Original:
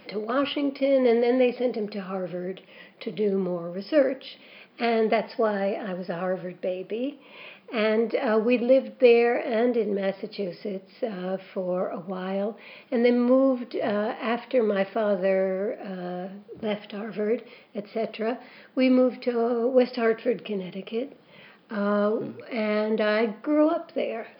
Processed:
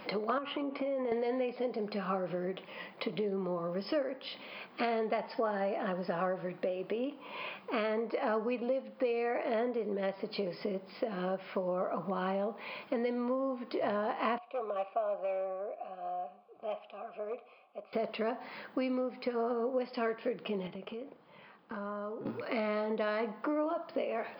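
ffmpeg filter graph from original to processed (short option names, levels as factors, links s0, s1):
-filter_complex "[0:a]asettb=1/sr,asplit=3[s0][s1][s2];[s0]atrim=end=0.384[s3];[s1]atrim=start=0.38:end=1.12,asetpts=PTS-STARTPTS,afade=t=in:d=0.004:c=qsin,afade=t=out:st=0.736:d=0.004:c=qsin,highpass=140,lowpass=2600,acompressor=threshold=0.0355:ratio=5:attack=3.2:release=140:knee=1:detection=peak[s4];[s2]atrim=start=1.116[s5];[s3][s4]acrossfade=d=0.004:c1=hsin:c2=qsin[s6];[s6][s5]acrossfade=d=0.004:c1=qsin:c2=hsin,asettb=1/sr,asplit=3[s7][s8][s9];[s7]atrim=end=14.384[s10];[s8]atrim=start=14.38:end=17.93,asetpts=PTS-STARTPTS,afade=t=in:d=0.004:c=qsin,afade=t=out:st=3.546:d=0.004:c=qsin,equalizer=f=880:w=1.8:g=-4.5,asoftclip=type=hard:threshold=0.119,asplit=3[s11][s12][s13];[s11]bandpass=f=730:t=q:w=8,volume=1[s14];[s12]bandpass=f=1090:t=q:w=8,volume=0.501[s15];[s13]bandpass=f=2440:t=q:w=8,volume=0.355[s16];[s14][s15][s16]amix=inputs=3:normalize=0[s17];[s9]atrim=start=17.926[s18];[s10][s17]acrossfade=d=0.004:c1=hsin:c2=qsin[s19];[s19][s18]acrossfade=d=0.004:c1=qsin:c2=hsin,asettb=1/sr,asplit=3[s20][s21][s22];[s20]atrim=end=20.674[s23];[s21]atrim=start=20.67:end=22.26,asetpts=PTS-STARTPTS,afade=t=in:d=0.004:c=qsin,afade=t=out:st=1.586:d=0.004:c=qsin,agate=range=0.398:threshold=0.00708:ratio=16:release=100:detection=peak,highshelf=f=4200:g=-8.5,acompressor=threshold=0.01:ratio=8:attack=3.2:release=140:knee=1:detection=peak[s24];[s22]atrim=start=22.256[s25];[s23][s24]acrossfade=d=0.004:c1=hsin:c2=qsin[s26];[s26][s25]acrossfade=d=0.004:c1=qsin:c2=hsin,acompressor=threshold=0.0224:ratio=6,equalizer=f=990:t=o:w=1:g=9"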